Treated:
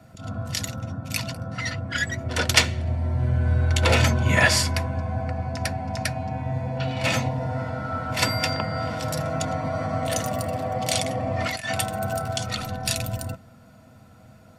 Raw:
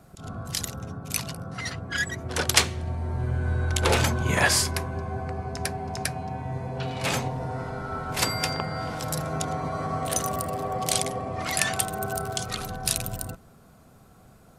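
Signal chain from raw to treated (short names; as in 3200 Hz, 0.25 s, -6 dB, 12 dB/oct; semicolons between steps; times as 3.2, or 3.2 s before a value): 11.05–11.7 negative-ratio compressor -30 dBFS, ratio -0.5; reverb, pre-delay 3 ms, DRR 6.5 dB; gain -4 dB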